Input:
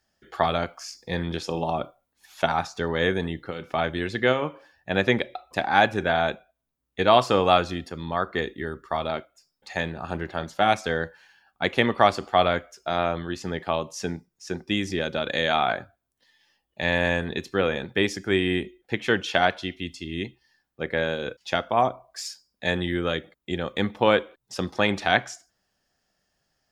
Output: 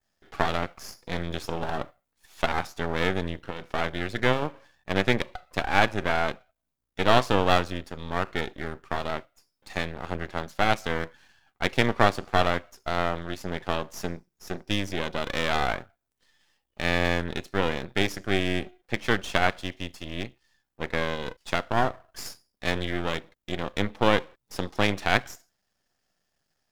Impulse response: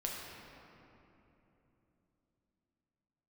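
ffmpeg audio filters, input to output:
-af "adynamicequalizer=threshold=0.00794:dfrequency=4000:dqfactor=1.3:tfrequency=4000:tqfactor=1.3:attack=5:release=100:ratio=0.375:range=1.5:mode=cutabove:tftype=bell,aeval=exprs='max(val(0),0)':c=same,volume=1.12"

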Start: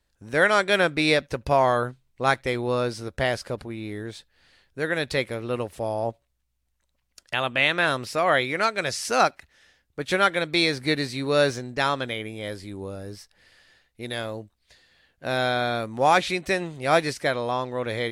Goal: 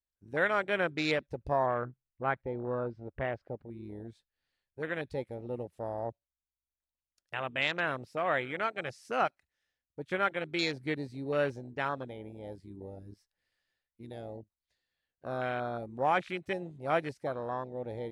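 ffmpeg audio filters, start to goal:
-filter_complex "[0:a]afwtdn=0.0501,asettb=1/sr,asplit=3[s0][s1][s2];[s0]atrim=end=1.664[s3];[s1]atrim=start=1.66:end=3.66,asetpts=PTS-STARTPTS,afade=t=in:d=0.004:c=qsin,afade=t=out:st=1.996:d=0.004:c=qsin,lowpass=2100[s4];[s2]atrim=start=3.656[s5];[s3][s4]acrossfade=d=0.004:c1=hsin:c2=qsin[s6];[s6][s5]acrossfade=d=0.004:c1=qsin:c2=hsin,volume=0.355"

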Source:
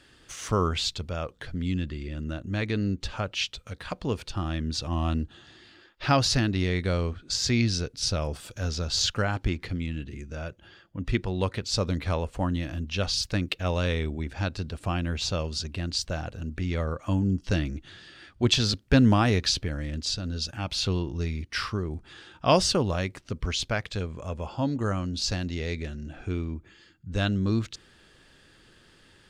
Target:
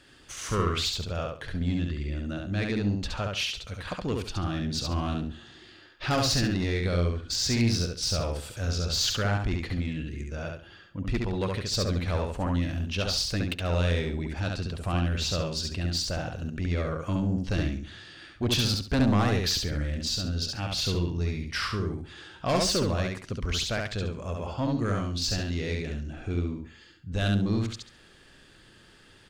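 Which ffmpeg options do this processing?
-af "asoftclip=type=tanh:threshold=0.0891,aecho=1:1:69|138|207|276:0.708|0.177|0.0442|0.0111"

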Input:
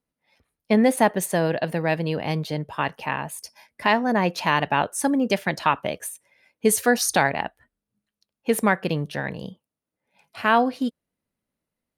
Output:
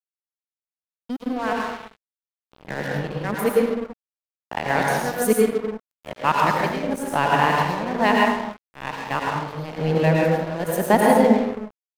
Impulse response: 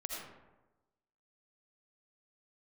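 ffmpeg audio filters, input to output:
-filter_complex "[0:a]areverse,asplit=2[s0][s1];[s1]adelay=144,lowpass=f=3800:p=1,volume=0.141,asplit=2[s2][s3];[s3]adelay=144,lowpass=f=3800:p=1,volume=0.38,asplit=2[s4][s5];[s5]adelay=144,lowpass=f=3800:p=1,volume=0.38[s6];[s0][s2][s4][s6]amix=inputs=4:normalize=0,agate=range=0.0224:threshold=0.0398:ratio=3:detection=peak,highshelf=f=2200:g=-6,tremolo=f=1.1:d=0.73,equalizer=f=14000:w=4.5:g=15[s7];[1:a]atrim=start_sample=2205,afade=t=out:st=0.4:d=0.01,atrim=end_sample=18081,asetrate=33516,aresample=44100[s8];[s7][s8]afir=irnorm=-1:irlink=0,aeval=exprs='sgn(val(0))*max(abs(val(0))-0.0141,0)':c=same,volume=1.78"

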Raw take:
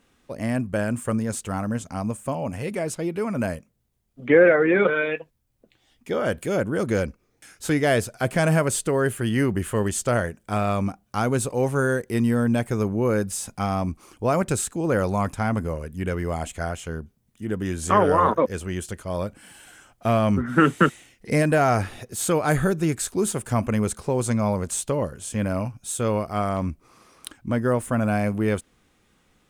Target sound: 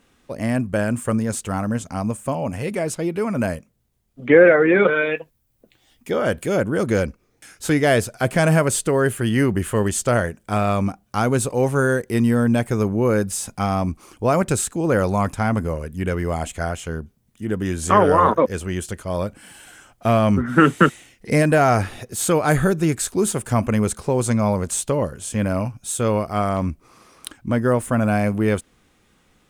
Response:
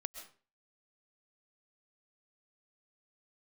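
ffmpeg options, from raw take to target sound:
-filter_complex "[0:a]asettb=1/sr,asplit=3[s0][s1][s2];[s0]atrim=end=5.074[s3];[s1]atrim=start=5.07:end=6.11,asetpts=PTS-STARTPTS,afade=t=in:d=0.004:c=qsin,afade=t=out:st=1.036:d=0.004:c=qsin,highshelf=f=11000:g=9.5[s4];[s2]atrim=start=6.106[s5];[s3][s4]acrossfade=d=0.004:c1=hsin:c2=qsin[s6];[s6][s5]acrossfade=d=0.004:c1=qsin:c2=hsin,volume=1.5"

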